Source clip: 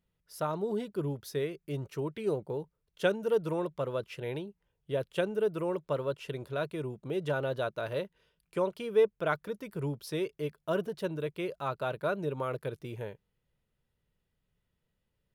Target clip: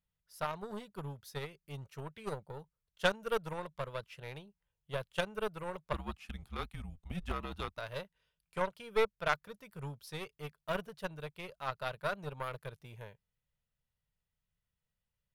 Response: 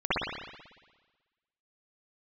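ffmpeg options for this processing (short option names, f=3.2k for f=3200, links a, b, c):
-filter_complex "[0:a]asettb=1/sr,asplit=3[a][b][c];[a]atrim=end=5.934[d];[b]atrim=start=5.93:end=7.78,asetpts=PTS-STARTPTS,afade=t=in:d=0.004:c=qsin,afade=t=out:st=1.846:d=0.004:c=qsin,afreqshift=-200[e];[c]atrim=start=7.776[f];[d][e]acrossfade=d=0.004:c1=hsin:c2=qsin[g];[g][f]acrossfade=d=0.004:c1=qsin:c2=hsin,aeval=exprs='0.2*(cos(1*acos(clip(val(0)/0.2,-1,1)))-cos(1*PI/2))+0.0316*(cos(2*acos(clip(val(0)/0.2,-1,1)))-cos(2*PI/2))+0.0178*(cos(7*acos(clip(val(0)/0.2,-1,1)))-cos(7*PI/2))':c=same,equalizer=f=330:t=o:w=1.1:g=-14,volume=1.5dB"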